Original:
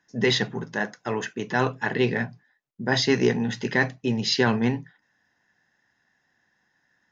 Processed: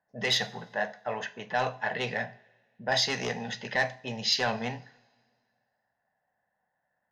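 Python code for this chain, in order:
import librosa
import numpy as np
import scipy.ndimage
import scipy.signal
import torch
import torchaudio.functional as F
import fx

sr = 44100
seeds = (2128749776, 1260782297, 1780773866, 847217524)

y = 10.0 ** (-13.5 / 20.0) * np.tanh(x / 10.0 ** (-13.5 / 20.0))
y = fx.peak_eq(y, sr, hz=1100.0, db=-7.5, octaves=1.4)
y = fx.env_lowpass(y, sr, base_hz=960.0, full_db=-20.5)
y = fx.low_shelf_res(y, sr, hz=470.0, db=-10.0, q=3.0)
y = fx.rev_double_slope(y, sr, seeds[0], early_s=0.41, late_s=1.9, knee_db=-20, drr_db=11.5)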